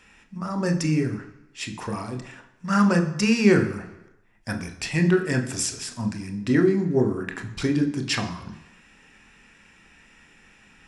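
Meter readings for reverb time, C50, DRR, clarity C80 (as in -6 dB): 1.0 s, 11.0 dB, 5.0 dB, 13.5 dB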